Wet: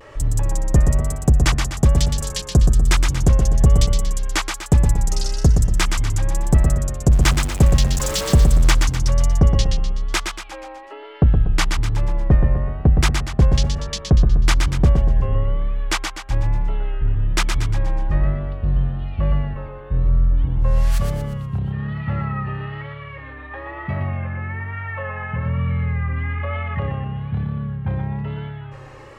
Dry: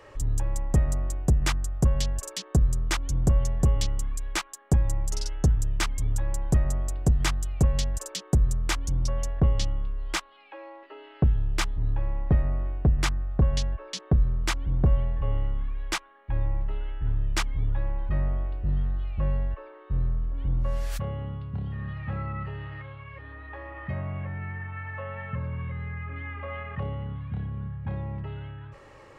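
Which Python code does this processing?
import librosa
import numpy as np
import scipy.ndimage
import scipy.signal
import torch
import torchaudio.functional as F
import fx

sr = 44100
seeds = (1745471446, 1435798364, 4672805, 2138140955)

p1 = fx.zero_step(x, sr, step_db=-30.0, at=(7.11, 8.72))
p2 = p1 + fx.echo_feedback(p1, sr, ms=121, feedback_pct=47, wet_db=-5.5, dry=0)
p3 = fx.vibrato(p2, sr, rate_hz=1.1, depth_cents=67.0)
y = p3 * 10.0 ** (7.0 / 20.0)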